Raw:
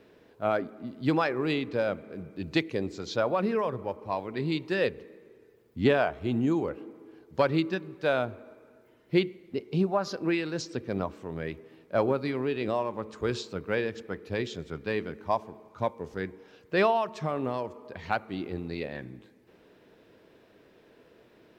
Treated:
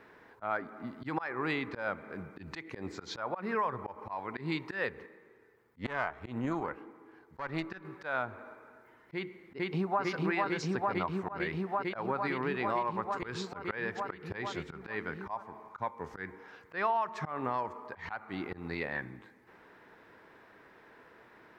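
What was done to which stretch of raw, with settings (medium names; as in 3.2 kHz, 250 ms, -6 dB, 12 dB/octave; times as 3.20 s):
5.06–7.85 s: valve stage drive 18 dB, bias 0.7
9.14–10.02 s: echo throw 450 ms, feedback 85%, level -2 dB
whole clip: high-order bell 1.3 kHz +11.5 dB; compression 3:1, threshold -26 dBFS; slow attack 125 ms; trim -3 dB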